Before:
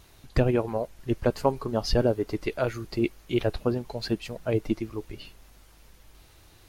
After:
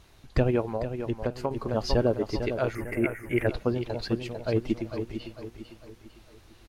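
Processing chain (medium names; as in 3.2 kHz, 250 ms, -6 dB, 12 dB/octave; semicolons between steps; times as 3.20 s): treble shelf 9.2 kHz -10.5 dB; feedback delay 450 ms, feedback 42%, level -8.5 dB; 0.71–1.51 s: compression, threshold -24 dBFS, peak gain reduction 8 dB; 2.75–3.47 s: FFT filter 1.2 kHz 0 dB, 2 kHz +14 dB, 4.1 kHz -26 dB, 9.3 kHz +12 dB; trim -1 dB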